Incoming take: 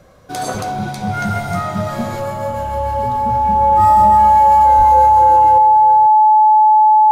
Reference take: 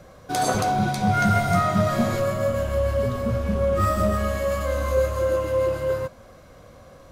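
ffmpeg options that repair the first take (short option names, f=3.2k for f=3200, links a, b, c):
-filter_complex "[0:a]bandreject=f=860:w=30,asplit=3[a][b][c];[a]afade=t=out:st=4.77:d=0.02[d];[b]highpass=f=140:w=0.5412,highpass=f=140:w=1.3066,afade=t=in:st=4.77:d=0.02,afade=t=out:st=4.89:d=0.02[e];[c]afade=t=in:st=4.89:d=0.02[f];[d][e][f]amix=inputs=3:normalize=0,asetnsamples=n=441:p=0,asendcmd='5.58 volume volume 9dB',volume=0dB"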